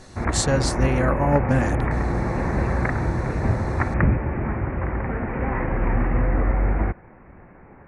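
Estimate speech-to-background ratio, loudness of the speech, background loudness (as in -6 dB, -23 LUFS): 0.5 dB, -24.0 LUFS, -24.5 LUFS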